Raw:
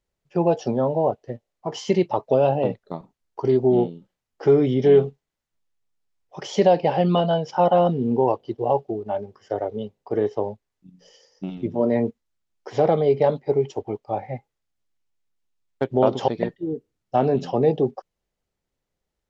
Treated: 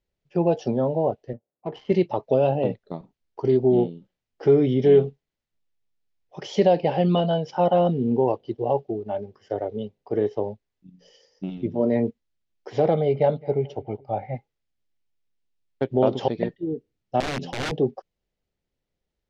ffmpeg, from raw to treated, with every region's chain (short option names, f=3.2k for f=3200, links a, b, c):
-filter_complex "[0:a]asettb=1/sr,asplit=3[a][b][c];[a]atrim=end=1.334[d];[b]atrim=start=1.33:end=1.92,asetpts=PTS-STARTPTS,afade=t=in:d=0.004:c=qsin,afade=t=out:st=0.586:d=0.004:c=qsin,highpass=130,adynamicsmooth=sensitivity=4:basefreq=1.4k,aemphasis=mode=reproduction:type=75kf[e];[c]atrim=start=1.916[f];[d][e]acrossfade=d=0.004:c1=hsin:c2=qsin[g];[g][f]acrossfade=d=0.004:c1=qsin:c2=hsin,asettb=1/sr,asplit=3[h][i][j];[h]atrim=end=12.944[k];[i]atrim=start=12.94:end=14.35,asetpts=PTS-STARTPTS,afade=t=in:d=0.004:c=qsin,afade=t=out:st=1.406:d=0.004:c=qsin,lowpass=3.9k,aecho=1:1:1.4:0.37,atrim=end_sample=62181,asplit=2[l][m];[m]adelay=213,lowpass=f=2.2k:p=1,volume=-23dB,asplit=2[n][o];[o]adelay=213,lowpass=f=2.2k:p=1,volume=0.5,asplit=2[p][q];[q]adelay=213,lowpass=f=2.2k:p=1,volume=0.5[r];[l][n][p][r]amix=inputs=4:normalize=0,atrim=end_sample=62181[s];[j]atrim=start=14.346[t];[k][s]acrossfade=d=0.004:c1=hsin:c2=qsin[u];[u][t]acrossfade=d=0.004:c1=qsin:c2=hsin,asettb=1/sr,asplit=3[v][w][x];[v]atrim=end=17.204[y];[w]atrim=start=17.2:end=17.72,asetpts=PTS-STARTPTS,afade=t=in:d=0.004:c=qsin,afade=t=out:st=0.516:d=0.004:c=qsin,equalizer=f=1.3k:w=1.9:g=-7.5,acompressor=threshold=-19dB:ratio=8:attack=3.2:release=140:knee=1:detection=peak,aeval=exprs='(mod(10.6*val(0)+1,2)-1)/10.6':c=same[z];[x]atrim=start=17.716[aa];[y][z]acrossfade=d=0.004:c1=hsin:c2=qsin[ab];[ab][aa]acrossfade=d=0.004:c1=qsin:c2=hsin,lowpass=4.9k,equalizer=f=1.1k:w=1.1:g=-6"